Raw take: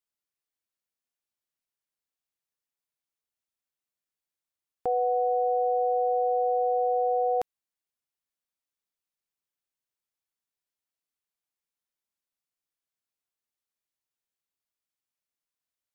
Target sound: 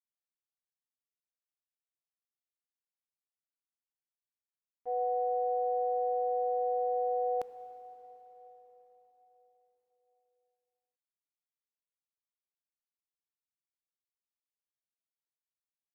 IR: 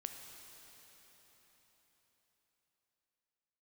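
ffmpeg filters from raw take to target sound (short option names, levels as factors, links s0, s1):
-filter_complex "[0:a]agate=range=0.0224:threshold=0.158:ratio=3:detection=peak,asplit=2[s0][s1];[1:a]atrim=start_sample=2205[s2];[s1][s2]afir=irnorm=-1:irlink=0,volume=1.19[s3];[s0][s3]amix=inputs=2:normalize=0"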